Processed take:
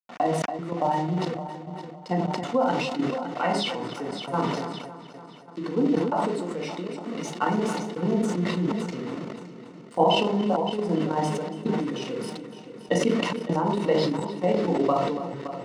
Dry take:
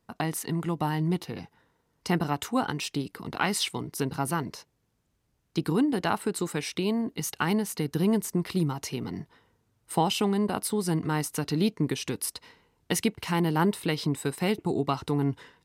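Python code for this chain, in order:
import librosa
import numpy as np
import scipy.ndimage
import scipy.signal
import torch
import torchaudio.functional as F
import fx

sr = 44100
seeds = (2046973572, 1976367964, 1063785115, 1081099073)

p1 = fx.spec_expand(x, sr, power=1.5)
p2 = fx.band_shelf(p1, sr, hz=660.0, db=11.5, octaves=1.2)
p3 = fx.room_shoebox(p2, sr, seeds[0], volume_m3=570.0, walls='furnished', distance_m=2.2)
p4 = fx.step_gate(p3, sr, bpm=179, pattern='xxxxx..xxxx', floor_db=-24.0, edge_ms=4.5)
p5 = np.where(np.abs(p4) >= 10.0 ** (-31.0 / 20.0), p4, 0.0)
p6 = p5 + fx.echo_heads(p5, sr, ms=283, heads='first and second', feedback_pct=52, wet_db=-16, dry=0)
p7 = fx.level_steps(p6, sr, step_db=10)
p8 = scipy.signal.sosfilt(scipy.signal.bessel(2, 260.0, 'highpass', norm='mag', fs=sr, output='sos'), p7)
p9 = fx.air_absorb(p8, sr, metres=120.0)
p10 = fx.notch_comb(p9, sr, f0_hz=810.0)
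p11 = fx.sustainer(p10, sr, db_per_s=32.0)
y = F.gain(torch.from_numpy(p11), 2.0).numpy()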